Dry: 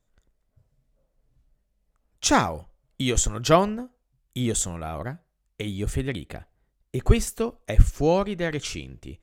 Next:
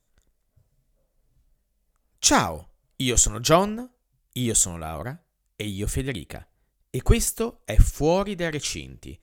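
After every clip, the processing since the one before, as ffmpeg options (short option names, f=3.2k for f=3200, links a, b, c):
-af "aemphasis=mode=production:type=cd"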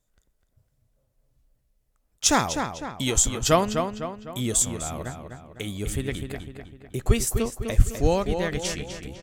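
-filter_complex "[0:a]asplit=2[a][b];[b]adelay=252,lowpass=f=3.8k:p=1,volume=-6.5dB,asplit=2[c][d];[d]adelay=252,lowpass=f=3.8k:p=1,volume=0.48,asplit=2[e][f];[f]adelay=252,lowpass=f=3.8k:p=1,volume=0.48,asplit=2[g][h];[h]adelay=252,lowpass=f=3.8k:p=1,volume=0.48,asplit=2[i][j];[j]adelay=252,lowpass=f=3.8k:p=1,volume=0.48,asplit=2[k][l];[l]adelay=252,lowpass=f=3.8k:p=1,volume=0.48[m];[a][c][e][g][i][k][m]amix=inputs=7:normalize=0,volume=-2dB"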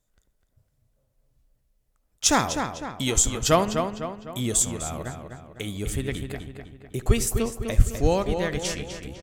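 -filter_complex "[0:a]asplit=2[a][b];[b]adelay=74,lowpass=f=2.8k:p=1,volume=-16.5dB,asplit=2[c][d];[d]adelay=74,lowpass=f=2.8k:p=1,volume=0.5,asplit=2[e][f];[f]adelay=74,lowpass=f=2.8k:p=1,volume=0.5,asplit=2[g][h];[h]adelay=74,lowpass=f=2.8k:p=1,volume=0.5[i];[a][c][e][g][i]amix=inputs=5:normalize=0"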